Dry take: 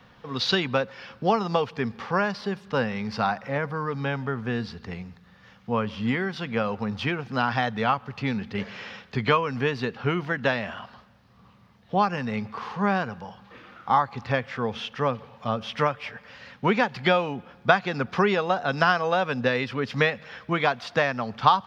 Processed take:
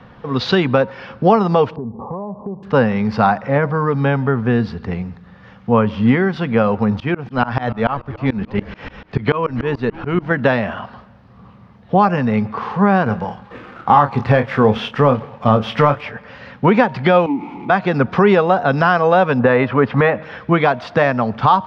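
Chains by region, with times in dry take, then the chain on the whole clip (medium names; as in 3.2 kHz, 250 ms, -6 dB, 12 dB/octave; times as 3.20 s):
1.76–2.63 s: steep low-pass 1.1 kHz 96 dB/octave + compression 5:1, threshold -36 dBFS + tape noise reduction on one side only decoder only
7.00–10.31 s: frequency-shifting echo 303 ms, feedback 45%, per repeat -130 Hz, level -17 dB + tremolo saw up 6.9 Hz, depth 100%
13.06–16.01 s: waveshaping leveller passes 1 + doubling 28 ms -10 dB
17.26–17.70 s: jump at every zero crossing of -23 dBFS + vowel filter u + distance through air 52 m
19.39–20.23 s: block-companded coder 7-bit + low-pass 2.9 kHz + peaking EQ 960 Hz +7.5 dB 1.6 oct
whole clip: low-pass 1.1 kHz 6 dB/octave; de-hum 312 Hz, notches 3; loudness maximiser +14 dB; trim -1 dB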